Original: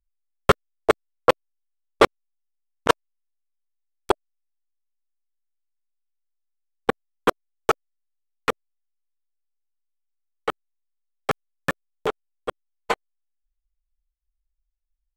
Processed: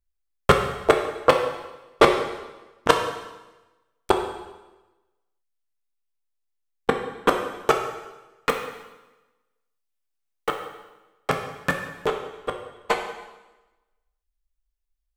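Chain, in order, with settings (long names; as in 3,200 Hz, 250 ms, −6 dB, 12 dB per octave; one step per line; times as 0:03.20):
0:08.49–0:10.49: floating-point word with a short mantissa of 2 bits
dense smooth reverb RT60 1.1 s, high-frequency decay 0.95×, DRR 3 dB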